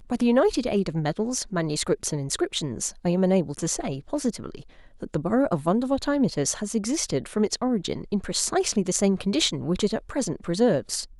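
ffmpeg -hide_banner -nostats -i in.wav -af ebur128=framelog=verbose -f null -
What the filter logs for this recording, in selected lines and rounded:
Integrated loudness:
  I:         -25.1 LUFS
  Threshold: -35.3 LUFS
Loudness range:
  LRA:         2.0 LU
  Threshold: -45.6 LUFS
  LRA low:   -26.7 LUFS
  LRA high:  -24.7 LUFS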